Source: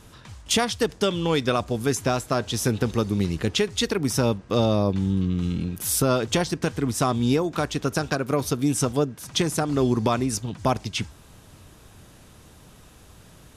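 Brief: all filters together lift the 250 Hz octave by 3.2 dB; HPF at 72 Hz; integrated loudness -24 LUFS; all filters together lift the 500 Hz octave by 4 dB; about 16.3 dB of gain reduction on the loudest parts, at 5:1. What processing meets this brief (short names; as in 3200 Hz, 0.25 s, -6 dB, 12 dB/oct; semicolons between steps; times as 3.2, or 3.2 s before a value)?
HPF 72 Hz; bell 250 Hz +3 dB; bell 500 Hz +4 dB; compressor 5:1, threshold -33 dBFS; gain +12 dB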